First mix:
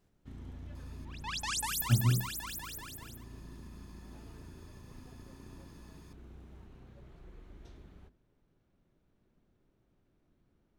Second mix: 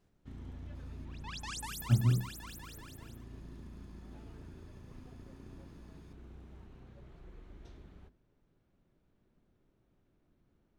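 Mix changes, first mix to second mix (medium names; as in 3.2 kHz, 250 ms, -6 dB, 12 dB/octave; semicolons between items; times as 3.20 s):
second sound -6.5 dB; master: add treble shelf 8.8 kHz -6 dB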